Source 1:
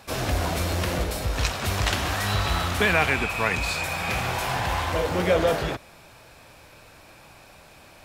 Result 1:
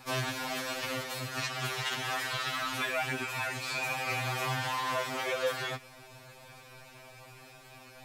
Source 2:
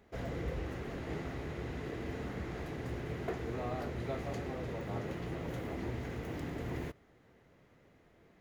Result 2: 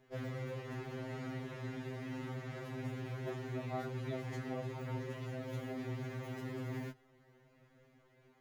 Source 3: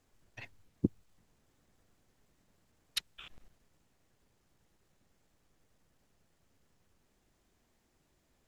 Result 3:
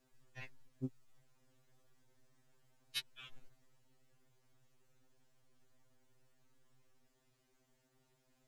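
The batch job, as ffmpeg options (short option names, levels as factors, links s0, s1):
-filter_complex "[0:a]acrossover=split=990|4500[s0][s1][s2];[s0]acompressor=threshold=0.0178:ratio=4[s3];[s1]acompressor=threshold=0.0316:ratio=4[s4];[s2]acompressor=threshold=0.00794:ratio=4[s5];[s3][s4][s5]amix=inputs=3:normalize=0,afftfilt=real='re*2.45*eq(mod(b,6),0)':imag='im*2.45*eq(mod(b,6),0)':win_size=2048:overlap=0.75"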